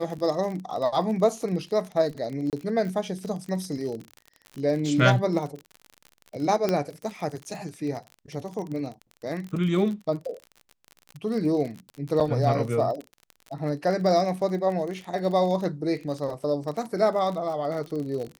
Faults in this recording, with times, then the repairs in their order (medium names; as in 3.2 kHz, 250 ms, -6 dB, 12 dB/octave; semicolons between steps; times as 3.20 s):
crackle 40 per s -32 dBFS
2.50–2.53 s: dropout 28 ms
6.69 s: pop -11 dBFS
12.20–12.21 s: dropout 6.4 ms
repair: de-click; interpolate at 2.50 s, 28 ms; interpolate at 12.20 s, 6.4 ms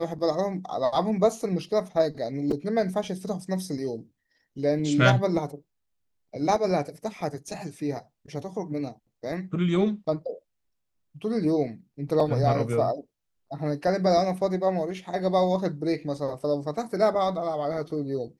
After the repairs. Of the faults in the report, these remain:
nothing left